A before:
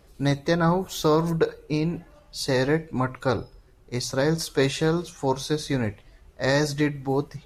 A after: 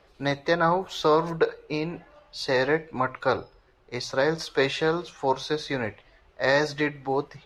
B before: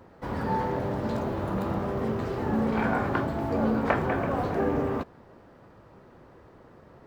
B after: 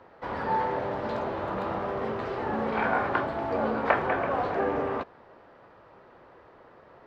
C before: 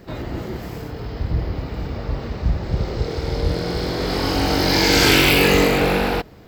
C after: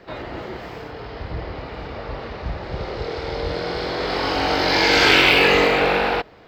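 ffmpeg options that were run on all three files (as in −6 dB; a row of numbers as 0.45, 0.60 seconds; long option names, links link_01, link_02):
-filter_complex "[0:a]acrossover=split=420 4700:gain=0.251 1 0.1[link_01][link_02][link_03];[link_01][link_02][link_03]amix=inputs=3:normalize=0,volume=3dB"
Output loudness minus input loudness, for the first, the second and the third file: −1.0, −0.5, +1.5 LU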